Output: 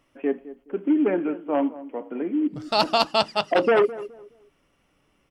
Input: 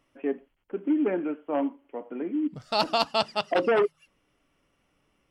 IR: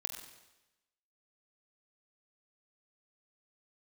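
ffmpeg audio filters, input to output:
-filter_complex "[0:a]asplit=2[a][b];[b]adelay=210,lowpass=f=930:p=1,volume=-15dB,asplit=2[c][d];[d]adelay=210,lowpass=f=930:p=1,volume=0.3,asplit=2[e][f];[f]adelay=210,lowpass=f=930:p=1,volume=0.3[g];[a][c][e][g]amix=inputs=4:normalize=0,volume=4dB"

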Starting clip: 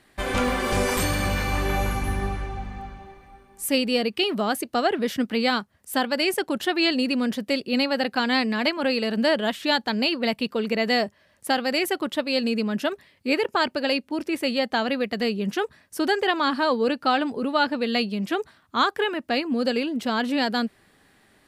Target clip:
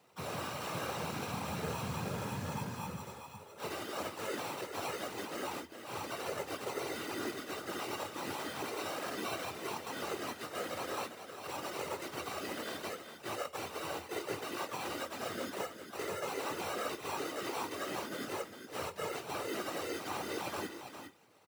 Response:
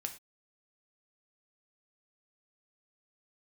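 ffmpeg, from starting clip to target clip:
-filter_complex "[0:a]alimiter=limit=-21.5dB:level=0:latency=1:release=90,acrusher=samples=27:mix=1:aa=0.000001,lowshelf=f=470:g=-9.5,asoftclip=type=tanh:threshold=-32dB,aecho=1:1:2.6:0.35,asplit=2[a][b];[1:a]atrim=start_sample=2205,adelay=21[c];[b][c]afir=irnorm=-1:irlink=0,volume=-6.5dB[d];[a][d]amix=inputs=2:normalize=0,asplit=2[e][f];[f]asetrate=58866,aresample=44100,atempo=0.749154,volume=-6dB[g];[e][g]amix=inputs=2:normalize=0,aecho=1:1:404:0.376,afftfilt=real='hypot(re,im)*cos(2*PI*random(0))':imag='hypot(re,im)*sin(2*PI*random(1))':win_size=512:overlap=0.75,afreqshift=77,volume=2dB"

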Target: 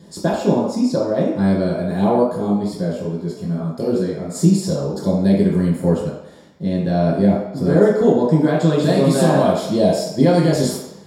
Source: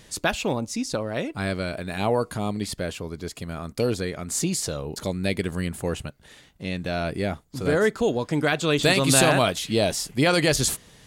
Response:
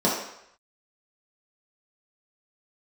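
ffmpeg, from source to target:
-filter_complex "[0:a]alimiter=limit=-13dB:level=0:latency=1:release=65,equalizer=f=3.1k:t=o:w=2.3:g=-6,bandreject=f=2.6k:w=16[a];[1:a]atrim=start_sample=2205,asetrate=41013,aresample=44100[b];[a][b]afir=irnorm=-1:irlink=0,asplit=3[c][d][e];[c]afade=t=out:st=2.22:d=0.02[f];[d]flanger=delay=16.5:depth=4.1:speed=2.5,afade=t=in:st=2.22:d=0.02,afade=t=out:st=4.34:d=0.02[g];[e]afade=t=in:st=4.34:d=0.02[h];[f][g][h]amix=inputs=3:normalize=0,volume=-10.5dB"

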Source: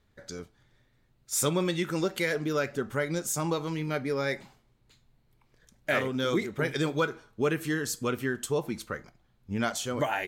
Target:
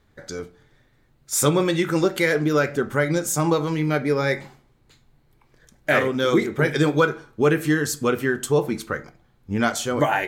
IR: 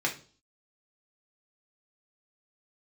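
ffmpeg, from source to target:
-filter_complex "[0:a]asplit=2[a][b];[1:a]atrim=start_sample=2205,lowpass=2.6k[c];[b][c]afir=irnorm=-1:irlink=0,volume=-13.5dB[d];[a][d]amix=inputs=2:normalize=0,volume=6dB"

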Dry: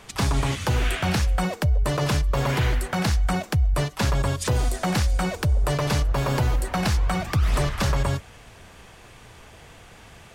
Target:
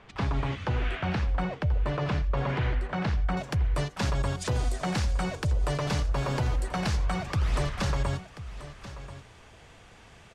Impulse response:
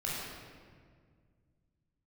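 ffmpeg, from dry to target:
-af "asetnsamples=n=441:p=0,asendcmd='3.37 lowpass f 8200',lowpass=2.8k,aecho=1:1:1035:0.2,volume=-5.5dB"

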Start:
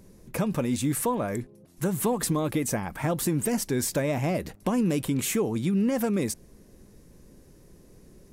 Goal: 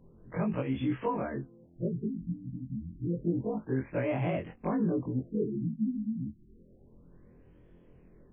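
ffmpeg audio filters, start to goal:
-af "afftfilt=real='re':imag='-im':win_size=2048:overlap=0.75,afftfilt=real='re*lt(b*sr/1024,260*pow(3500/260,0.5+0.5*sin(2*PI*0.29*pts/sr)))':imag='im*lt(b*sr/1024,260*pow(3500/260,0.5+0.5*sin(2*PI*0.29*pts/sr)))':win_size=1024:overlap=0.75"

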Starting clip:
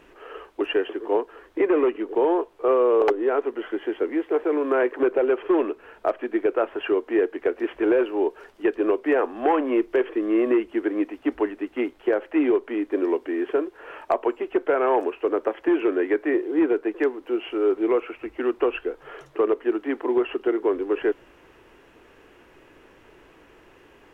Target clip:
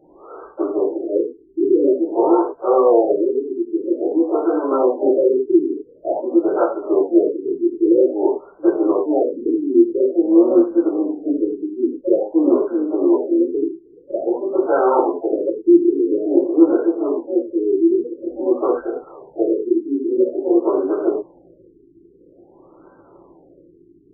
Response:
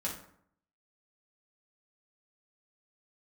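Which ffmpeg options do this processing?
-filter_complex "[0:a]asplit=2[a][b];[b]asetrate=66075,aresample=44100,atempo=0.66742,volume=-10dB[c];[a][c]amix=inputs=2:normalize=0,lowshelf=f=130:t=q:w=1.5:g=-8[d];[1:a]atrim=start_sample=2205,atrim=end_sample=3087,asetrate=26901,aresample=44100[e];[d][e]afir=irnorm=-1:irlink=0,afftfilt=real='re*lt(b*sr/1024,420*pow(1600/420,0.5+0.5*sin(2*PI*0.49*pts/sr)))':imag='im*lt(b*sr/1024,420*pow(1600/420,0.5+0.5*sin(2*PI*0.49*pts/sr)))':win_size=1024:overlap=0.75,volume=-2dB"

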